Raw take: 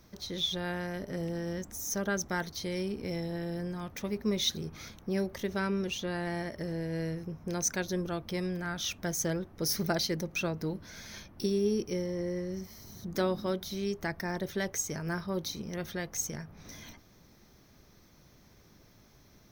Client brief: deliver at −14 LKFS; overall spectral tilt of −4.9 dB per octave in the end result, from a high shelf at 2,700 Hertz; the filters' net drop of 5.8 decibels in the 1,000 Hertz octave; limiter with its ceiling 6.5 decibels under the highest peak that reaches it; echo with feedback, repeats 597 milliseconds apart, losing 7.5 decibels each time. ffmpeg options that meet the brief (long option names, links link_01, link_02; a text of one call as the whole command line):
ffmpeg -i in.wav -af "equalizer=frequency=1000:width_type=o:gain=-7.5,highshelf=frequency=2700:gain=-6,alimiter=level_in=1.5dB:limit=-24dB:level=0:latency=1,volume=-1.5dB,aecho=1:1:597|1194|1791|2388|2985:0.422|0.177|0.0744|0.0312|0.0131,volume=22dB" out.wav